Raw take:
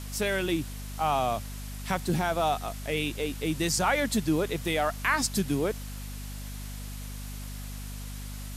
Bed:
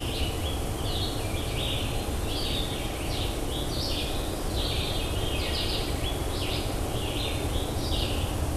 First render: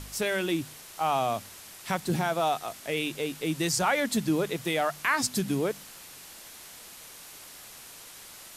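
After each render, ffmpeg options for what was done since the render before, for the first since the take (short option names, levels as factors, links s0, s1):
-af "bandreject=f=50:t=h:w=4,bandreject=f=100:t=h:w=4,bandreject=f=150:t=h:w=4,bandreject=f=200:t=h:w=4,bandreject=f=250:t=h:w=4"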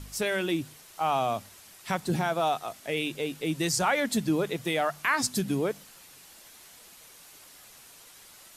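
-af "afftdn=nr=6:nf=-47"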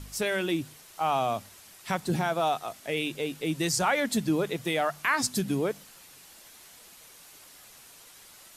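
-af anull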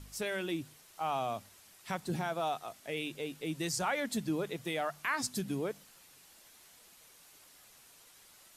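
-af "volume=0.422"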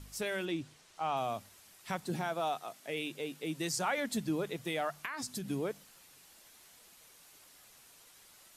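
-filter_complex "[0:a]asettb=1/sr,asplit=3[s0][s1][s2];[s0]atrim=end=0.454[s3];[s1]atrim=start=0.45:end=1.17,asetpts=PTS-STARTPTS,afade=t=in:d=0.004:c=qsin,afade=t=out:st=0.716:d=0.004:c=qsin,lowpass=7400[s4];[s2]atrim=start=1.166[s5];[s3][s4]acrossfade=d=0.004:c1=hsin:c2=qsin[s6];[s6][s5]acrossfade=d=0.004:c1=qsin:c2=hsin,asettb=1/sr,asplit=3[s7][s8][s9];[s7]atrim=end=2.074[s10];[s8]atrim=start=2.07:end=3.98,asetpts=PTS-STARTPTS,afade=t=in:d=0.004:c=qsin,afade=t=out:st=1.906:d=0.004:c=qsin,highpass=140[s11];[s9]atrim=start=3.976[s12];[s10][s11]acrossfade=d=0.004:c1=hsin:c2=qsin[s13];[s13][s12]acrossfade=d=0.004:c1=qsin:c2=hsin,asettb=1/sr,asplit=3[s14][s15][s16];[s14]atrim=end=5.054[s17];[s15]atrim=start=5.05:end=5.49,asetpts=PTS-STARTPTS,afade=t=in:d=0.004:c=qsin,afade=t=out:st=0.436:d=0.004:c=qsin,acompressor=threshold=0.0178:ratio=6:attack=3.2:release=140:knee=1:detection=peak[s18];[s16]atrim=start=5.486[s19];[s17][s18]acrossfade=d=0.004:c1=hsin:c2=qsin[s20];[s20][s19]acrossfade=d=0.004:c1=qsin:c2=hsin"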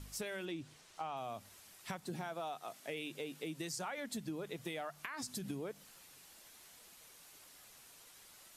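-af "acompressor=threshold=0.0112:ratio=6"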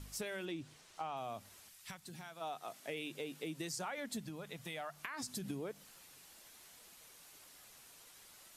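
-filter_complex "[0:a]asplit=3[s0][s1][s2];[s0]afade=t=out:st=1.68:d=0.02[s3];[s1]equalizer=f=430:w=0.4:g=-13,afade=t=in:st=1.68:d=0.02,afade=t=out:st=2.4:d=0.02[s4];[s2]afade=t=in:st=2.4:d=0.02[s5];[s3][s4][s5]amix=inputs=3:normalize=0,asettb=1/sr,asplit=3[s6][s7][s8];[s6]atrim=end=4.264[s9];[s7]atrim=start=4.26:end=4.91,asetpts=PTS-STARTPTS,afade=t=in:d=0.004:c=qsin,afade=t=out:st=0.646:d=0.004:c=qsin,equalizer=f=370:t=o:w=0.66:g=-10.5[s10];[s8]atrim=start=4.906[s11];[s9][s10]acrossfade=d=0.004:c1=hsin:c2=qsin[s12];[s12][s11]acrossfade=d=0.004:c1=qsin:c2=hsin"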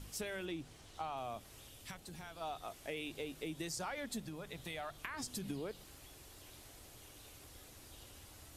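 -filter_complex "[1:a]volume=0.0299[s0];[0:a][s0]amix=inputs=2:normalize=0"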